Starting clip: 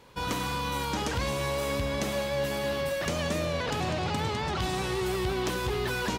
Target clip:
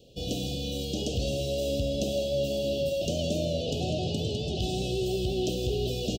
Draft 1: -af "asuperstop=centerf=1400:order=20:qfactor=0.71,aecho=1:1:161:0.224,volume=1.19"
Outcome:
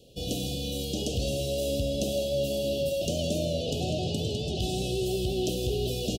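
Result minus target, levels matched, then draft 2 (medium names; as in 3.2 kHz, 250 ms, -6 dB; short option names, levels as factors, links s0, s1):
8 kHz band +3.0 dB
-af "asuperstop=centerf=1400:order=20:qfactor=0.71,equalizer=f=11000:w=1.8:g=-13.5,aecho=1:1:161:0.224,volume=1.19"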